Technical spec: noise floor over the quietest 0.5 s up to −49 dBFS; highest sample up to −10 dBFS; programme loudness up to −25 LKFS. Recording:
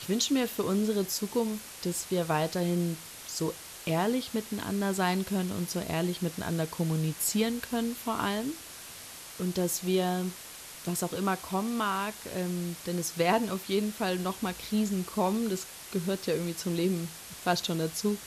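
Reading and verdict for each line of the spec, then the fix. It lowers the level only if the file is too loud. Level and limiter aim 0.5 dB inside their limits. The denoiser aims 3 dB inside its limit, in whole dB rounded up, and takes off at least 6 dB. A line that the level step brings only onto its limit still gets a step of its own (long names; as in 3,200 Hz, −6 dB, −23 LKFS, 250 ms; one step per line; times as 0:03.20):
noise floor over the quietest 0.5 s −45 dBFS: out of spec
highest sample −13.5 dBFS: in spec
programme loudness −30.5 LKFS: in spec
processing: broadband denoise 7 dB, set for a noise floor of −45 dBFS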